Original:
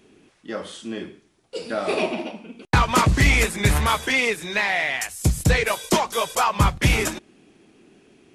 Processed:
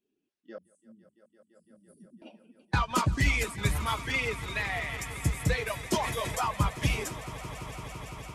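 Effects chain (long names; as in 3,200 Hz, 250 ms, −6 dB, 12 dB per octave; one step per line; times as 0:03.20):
spectral dynamics exaggerated over time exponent 1.5
harmonic generator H 3 −21 dB, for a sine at −8.5 dBFS
0:00.58–0:02.22: inverse Chebyshev band-stop filter 800–2,700 Hz, stop band 80 dB
on a send: echo that builds up and dies away 169 ms, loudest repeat 5, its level −18 dB
0:05.96–0:06.51: on the sum: level that may fall only so fast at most 35 dB per second
level −5.5 dB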